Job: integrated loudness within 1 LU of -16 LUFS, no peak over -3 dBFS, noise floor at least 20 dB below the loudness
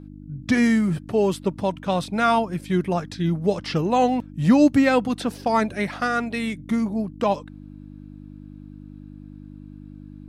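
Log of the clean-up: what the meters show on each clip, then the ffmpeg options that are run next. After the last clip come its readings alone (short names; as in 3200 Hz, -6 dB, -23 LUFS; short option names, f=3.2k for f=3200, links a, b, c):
hum 50 Hz; harmonics up to 300 Hz; hum level -37 dBFS; loudness -22.0 LUFS; peak -6.5 dBFS; loudness target -16.0 LUFS
-> -af "bandreject=f=50:t=h:w=4,bandreject=f=100:t=h:w=4,bandreject=f=150:t=h:w=4,bandreject=f=200:t=h:w=4,bandreject=f=250:t=h:w=4,bandreject=f=300:t=h:w=4"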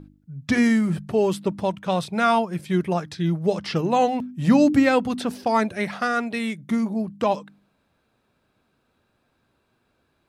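hum none; loudness -22.5 LUFS; peak -6.0 dBFS; loudness target -16.0 LUFS
-> -af "volume=6.5dB,alimiter=limit=-3dB:level=0:latency=1"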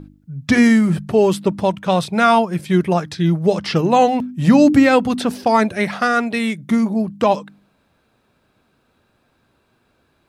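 loudness -16.5 LUFS; peak -3.0 dBFS; noise floor -63 dBFS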